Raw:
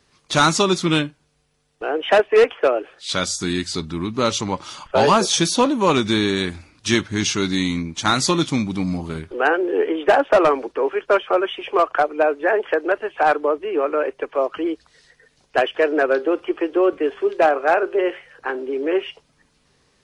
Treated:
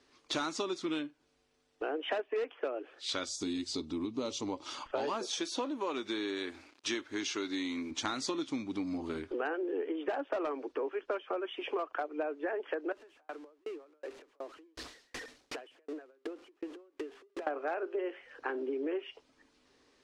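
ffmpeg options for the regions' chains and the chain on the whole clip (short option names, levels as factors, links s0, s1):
-filter_complex "[0:a]asettb=1/sr,asplit=3[s0][s1][s2];[s0]atrim=end=3.294[s3];[s1]atrim=start=3.29:end=4.66,asetpts=PTS-STARTPTS,afade=t=in:d=0.004:c=qsin,afade=t=out:st=1.366:d=0.004:c=qsin,equalizer=f=1600:t=o:w=0.96:g=-12.5,bandreject=f=360:w=12[s4];[s2]atrim=start=4.656[s5];[s3][s4]acrossfade=d=0.004:c1=hsin:c2=qsin[s6];[s6][s5]acrossfade=d=0.004:c1=qsin:c2=hsin,asettb=1/sr,asplit=3[s7][s8][s9];[s7]atrim=end=5.344[s10];[s8]atrim=start=5.34:end=7.91,asetpts=PTS-STARTPTS,afade=t=in:d=0.004:c=qsin,afade=t=out:st=2.566:d=0.004:c=qsin,acrusher=bits=7:mix=0:aa=0.5,bass=f=250:g=-11,treble=f=4000:g=-2[s11];[s9]atrim=start=7.906[s12];[s10][s11]acrossfade=d=0.004:c1=hsin:c2=qsin[s13];[s13][s12]acrossfade=d=0.004:c1=qsin:c2=hsin,asettb=1/sr,asplit=3[s14][s15][s16];[s14]atrim=end=12.924[s17];[s15]atrim=start=12.92:end=17.47,asetpts=PTS-STARTPTS,afade=t=in:d=0.004:c=qsin,afade=t=out:st=4.546:d=0.004:c=qsin,aeval=exprs='val(0)+0.5*0.0531*sgn(val(0))':c=same,acompressor=threshold=0.0355:ratio=16:attack=3.2:release=140:knee=1:detection=peak,aeval=exprs='val(0)*pow(10,-40*if(lt(mod(2.7*n/s,1),2*abs(2.7)/1000),1-mod(2.7*n/s,1)/(2*abs(2.7)/1000),(mod(2.7*n/s,1)-2*abs(2.7)/1000)/(1-2*abs(2.7)/1000))/20)':c=same[s18];[s16]atrim=start=17.466[s19];[s17][s18]acrossfade=d=0.004:c1=hsin:c2=qsin[s20];[s20][s19]acrossfade=d=0.004:c1=qsin:c2=hsin,lowpass=6900,lowshelf=f=220:t=q:w=3:g=-7,acompressor=threshold=0.0447:ratio=6,volume=0.501"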